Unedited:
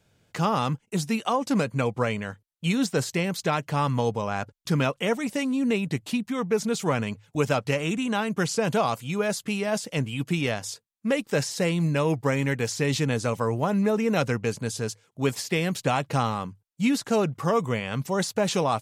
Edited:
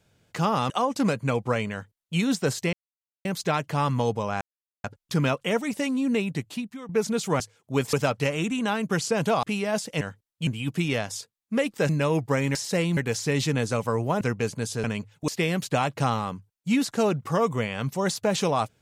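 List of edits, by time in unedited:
0:00.70–0:01.21: remove
0:02.23–0:02.69: duplicate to 0:10.00
0:03.24: splice in silence 0.52 s
0:04.40: splice in silence 0.43 s
0:05.51–0:06.45: fade out equal-power, to −15.5 dB
0:06.96–0:07.40: swap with 0:14.88–0:15.41
0:08.90–0:09.42: remove
0:11.42–0:11.84: move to 0:12.50
0:13.74–0:14.25: remove

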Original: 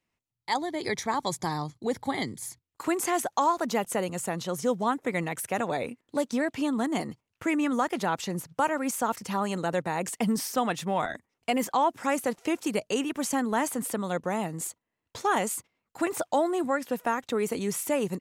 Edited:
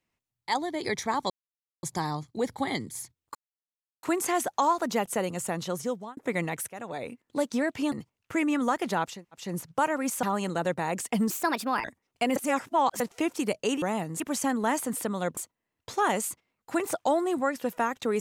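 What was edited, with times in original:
0:01.30: splice in silence 0.53 s
0:02.82: splice in silence 0.68 s
0:04.50–0:04.96: fade out
0:05.48–0:06.15: fade in, from −16 dB
0:06.71–0:07.03: remove
0:08.24: splice in room tone 0.30 s, crossfade 0.24 s
0:09.04–0:09.31: remove
0:10.38–0:11.11: play speed 135%
0:11.63–0:12.27: reverse
0:14.26–0:14.64: move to 0:13.09

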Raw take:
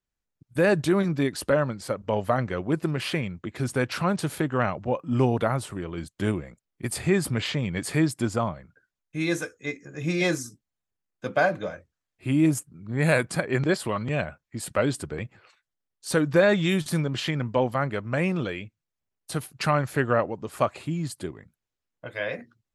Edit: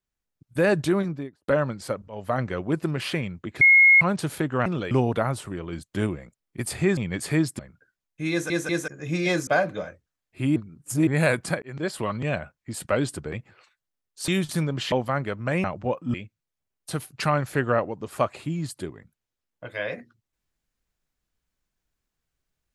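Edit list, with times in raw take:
0:00.84–0:01.48: fade out and dull
0:02.08–0:02.40: fade in, from −23 dB
0:03.61–0:04.01: beep over 2,160 Hz −11 dBFS
0:04.66–0:05.16: swap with 0:18.30–0:18.55
0:07.22–0:07.60: remove
0:08.22–0:08.54: remove
0:09.26: stutter in place 0.19 s, 3 plays
0:10.42–0:11.33: remove
0:12.42–0:12.93: reverse
0:13.48–0:13.89: fade in
0:16.14–0:16.65: remove
0:17.29–0:17.58: remove

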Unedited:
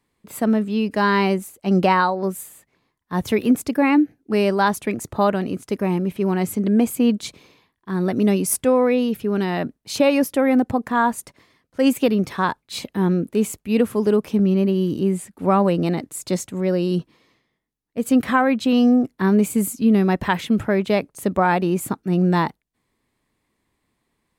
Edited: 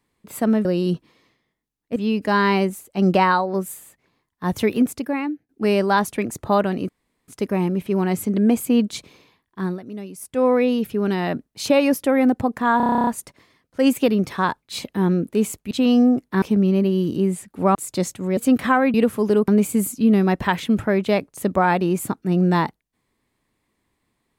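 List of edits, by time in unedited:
0:03.37–0:04.18: fade out, to −23.5 dB
0:05.58: splice in room tone 0.39 s
0:07.94–0:08.75: duck −15.5 dB, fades 0.15 s
0:11.07: stutter 0.03 s, 11 plays
0:13.71–0:14.25: swap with 0:18.58–0:19.29
0:15.58–0:16.08: remove
0:16.70–0:18.01: move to 0:00.65

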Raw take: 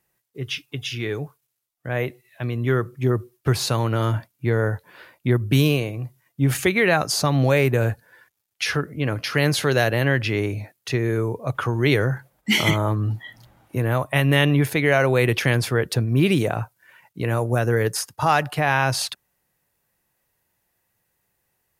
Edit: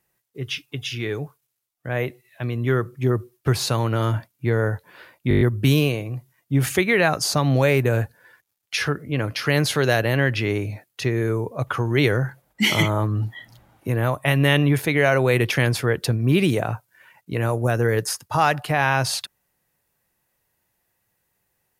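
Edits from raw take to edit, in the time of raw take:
0:05.29: stutter 0.02 s, 7 plays

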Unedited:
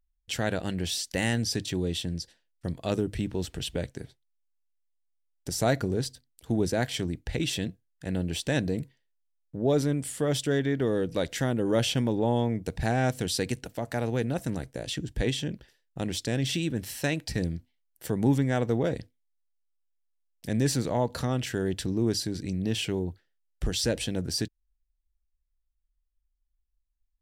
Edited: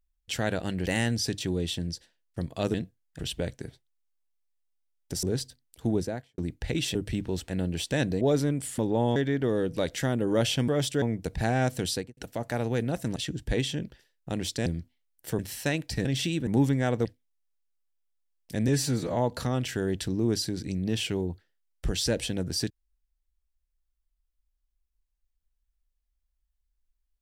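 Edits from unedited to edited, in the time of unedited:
0:00.86–0:01.13: remove
0:03.01–0:03.55: swap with 0:07.60–0:08.05
0:05.59–0:05.88: remove
0:06.52–0:07.03: fade out and dull
0:08.77–0:09.63: remove
0:10.20–0:10.54: swap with 0:12.06–0:12.44
0:13.31–0:13.59: fade out and dull
0:14.58–0:14.85: remove
0:16.35–0:16.77: swap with 0:17.43–0:18.16
0:18.74–0:18.99: remove
0:20.62–0:20.94: time-stretch 1.5×

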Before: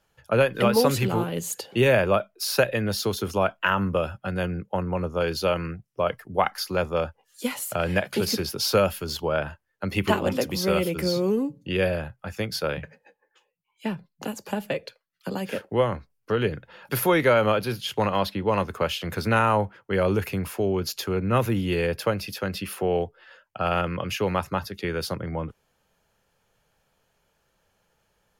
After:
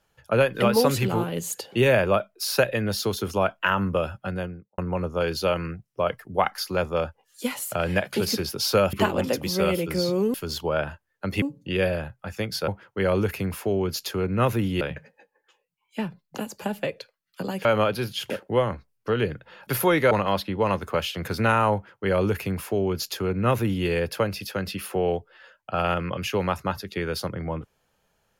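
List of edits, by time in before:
0:04.21–0:04.78: fade out and dull
0:08.93–0:10.01: move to 0:11.42
0:17.33–0:17.98: move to 0:15.52
0:19.61–0:21.74: duplicate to 0:12.68

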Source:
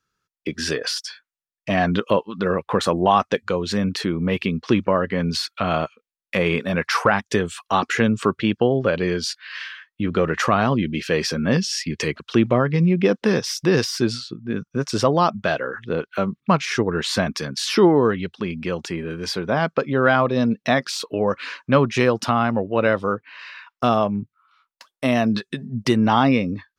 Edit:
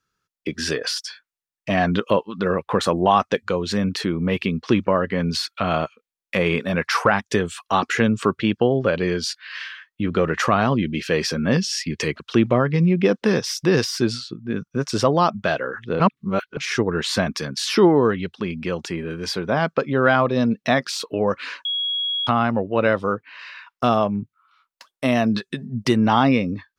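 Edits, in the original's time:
0:16.00–0:16.57: reverse
0:21.65–0:22.27: beep over 3,320 Hz −21 dBFS

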